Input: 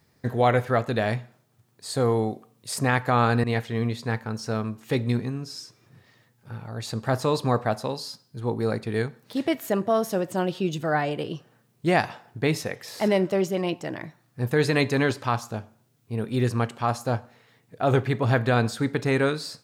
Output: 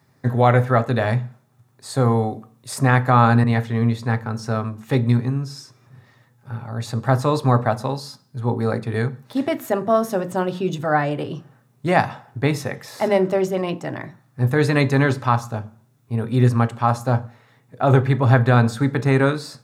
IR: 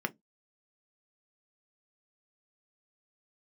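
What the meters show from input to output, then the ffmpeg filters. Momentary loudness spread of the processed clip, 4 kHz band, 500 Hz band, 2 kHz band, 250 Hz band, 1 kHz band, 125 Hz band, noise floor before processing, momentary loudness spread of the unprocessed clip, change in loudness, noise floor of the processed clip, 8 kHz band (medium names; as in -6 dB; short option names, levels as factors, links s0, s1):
13 LU, 0.0 dB, +3.5 dB, +3.5 dB, +5.0 dB, +6.0 dB, +8.5 dB, -65 dBFS, 12 LU, +5.5 dB, -59 dBFS, +1.0 dB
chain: -filter_complex "[0:a]asplit=2[s0][s1];[1:a]atrim=start_sample=2205,asetrate=27783,aresample=44100[s2];[s1][s2]afir=irnorm=-1:irlink=0,volume=0.841[s3];[s0][s3]amix=inputs=2:normalize=0,volume=0.596"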